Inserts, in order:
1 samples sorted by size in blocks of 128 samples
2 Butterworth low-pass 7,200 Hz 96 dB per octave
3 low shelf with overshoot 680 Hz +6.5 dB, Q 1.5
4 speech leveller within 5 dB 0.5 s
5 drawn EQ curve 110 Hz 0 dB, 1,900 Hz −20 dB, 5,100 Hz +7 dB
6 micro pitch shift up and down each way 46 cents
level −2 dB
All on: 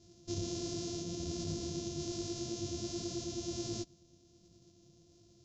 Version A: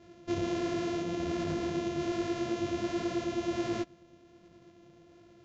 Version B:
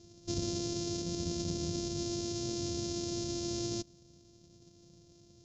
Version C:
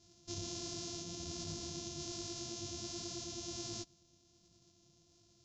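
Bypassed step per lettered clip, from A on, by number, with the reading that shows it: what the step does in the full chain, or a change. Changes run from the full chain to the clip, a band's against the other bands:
5, 8 kHz band −15.0 dB
6, change in crest factor +1.5 dB
3, change in integrated loudness −3.5 LU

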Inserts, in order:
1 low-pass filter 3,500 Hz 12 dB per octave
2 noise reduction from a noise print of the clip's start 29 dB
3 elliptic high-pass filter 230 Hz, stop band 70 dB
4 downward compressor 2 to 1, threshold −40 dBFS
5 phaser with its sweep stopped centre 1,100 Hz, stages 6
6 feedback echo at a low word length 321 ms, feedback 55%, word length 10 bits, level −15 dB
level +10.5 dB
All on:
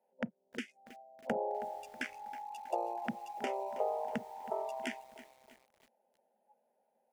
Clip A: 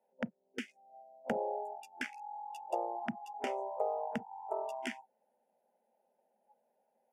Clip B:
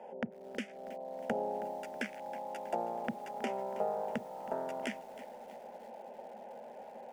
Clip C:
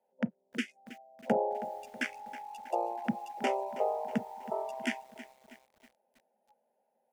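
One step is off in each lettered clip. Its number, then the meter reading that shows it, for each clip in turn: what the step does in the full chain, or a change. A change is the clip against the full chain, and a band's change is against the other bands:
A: 6, change in momentary loudness spread −4 LU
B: 2, 125 Hz band +2.5 dB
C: 4, 125 Hz band +3.5 dB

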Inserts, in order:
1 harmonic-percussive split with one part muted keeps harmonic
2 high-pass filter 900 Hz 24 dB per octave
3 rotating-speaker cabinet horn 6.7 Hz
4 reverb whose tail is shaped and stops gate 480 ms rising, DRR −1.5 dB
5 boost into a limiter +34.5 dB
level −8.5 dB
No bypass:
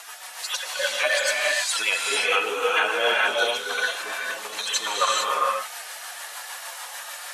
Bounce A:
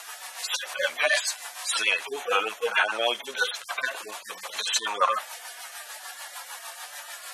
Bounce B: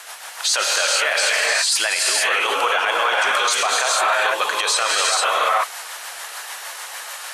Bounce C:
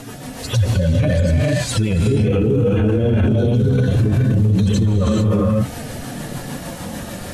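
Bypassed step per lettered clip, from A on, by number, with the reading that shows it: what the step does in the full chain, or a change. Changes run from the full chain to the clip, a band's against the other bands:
4, change in crest factor +4.0 dB
1, 8 kHz band +4.5 dB
2, 250 Hz band +37.0 dB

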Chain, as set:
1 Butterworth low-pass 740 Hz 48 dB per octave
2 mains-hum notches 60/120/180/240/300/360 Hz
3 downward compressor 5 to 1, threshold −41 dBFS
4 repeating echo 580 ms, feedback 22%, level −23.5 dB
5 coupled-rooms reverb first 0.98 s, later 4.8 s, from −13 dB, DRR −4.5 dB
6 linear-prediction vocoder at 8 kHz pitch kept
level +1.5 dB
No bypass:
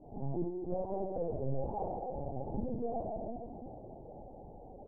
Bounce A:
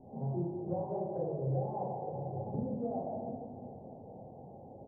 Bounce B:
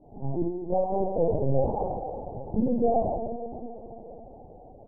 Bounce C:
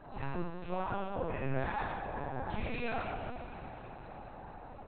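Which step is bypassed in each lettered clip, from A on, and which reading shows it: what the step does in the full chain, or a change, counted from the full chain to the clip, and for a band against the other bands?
6, 125 Hz band +4.0 dB
3, change in crest factor +1.5 dB
1, 1 kHz band +6.0 dB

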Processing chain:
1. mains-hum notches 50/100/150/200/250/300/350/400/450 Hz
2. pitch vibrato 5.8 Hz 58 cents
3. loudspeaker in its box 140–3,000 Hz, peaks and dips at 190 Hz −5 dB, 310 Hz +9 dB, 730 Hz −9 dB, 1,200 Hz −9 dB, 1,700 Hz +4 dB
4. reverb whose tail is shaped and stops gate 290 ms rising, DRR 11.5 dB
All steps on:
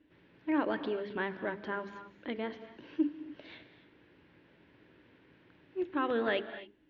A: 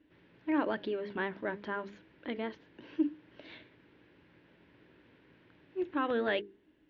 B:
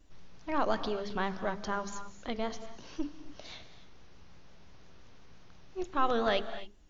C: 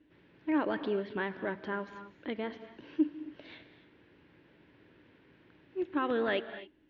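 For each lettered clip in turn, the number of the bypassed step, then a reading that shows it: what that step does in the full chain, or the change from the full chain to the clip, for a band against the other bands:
4, change in momentary loudness spread +5 LU
3, 250 Hz band −8.0 dB
1, 125 Hz band +2.5 dB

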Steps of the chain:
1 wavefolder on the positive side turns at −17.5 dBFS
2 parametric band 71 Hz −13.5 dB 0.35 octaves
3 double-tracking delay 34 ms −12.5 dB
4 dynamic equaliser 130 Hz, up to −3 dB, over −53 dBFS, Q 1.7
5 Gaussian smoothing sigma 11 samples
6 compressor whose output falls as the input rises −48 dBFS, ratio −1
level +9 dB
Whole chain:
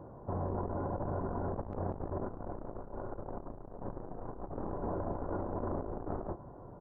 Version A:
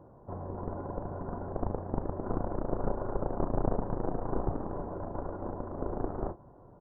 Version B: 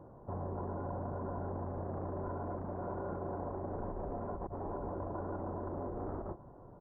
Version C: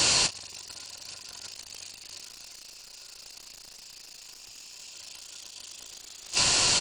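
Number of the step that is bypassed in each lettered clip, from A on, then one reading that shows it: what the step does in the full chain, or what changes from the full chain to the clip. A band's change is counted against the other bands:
6, change in crest factor +5.0 dB
1, distortion level −9 dB
5, 2 kHz band +29.0 dB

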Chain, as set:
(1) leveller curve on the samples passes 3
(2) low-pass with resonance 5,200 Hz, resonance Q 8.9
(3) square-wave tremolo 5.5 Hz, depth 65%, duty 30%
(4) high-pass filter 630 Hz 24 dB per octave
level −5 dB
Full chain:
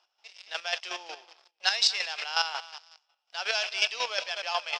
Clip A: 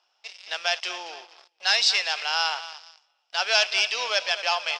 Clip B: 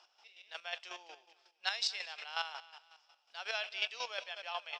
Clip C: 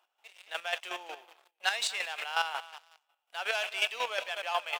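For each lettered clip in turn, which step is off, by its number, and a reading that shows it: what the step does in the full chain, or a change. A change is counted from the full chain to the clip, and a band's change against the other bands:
3, change in momentary loudness spread +3 LU
1, change in crest factor +2.0 dB
2, 4 kHz band −5.5 dB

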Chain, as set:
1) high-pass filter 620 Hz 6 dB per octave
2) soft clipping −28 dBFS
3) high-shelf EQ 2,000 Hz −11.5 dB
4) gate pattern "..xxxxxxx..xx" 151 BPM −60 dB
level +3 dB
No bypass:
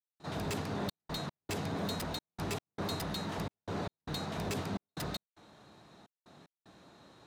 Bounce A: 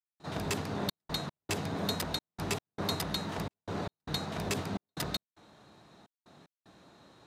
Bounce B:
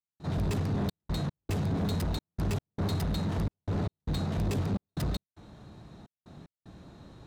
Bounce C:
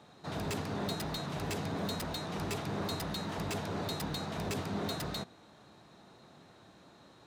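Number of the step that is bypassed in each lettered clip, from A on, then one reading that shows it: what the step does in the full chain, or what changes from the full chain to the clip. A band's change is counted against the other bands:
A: 2, distortion level −8 dB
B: 1, 125 Hz band +11.5 dB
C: 4, change in momentary loudness spread −10 LU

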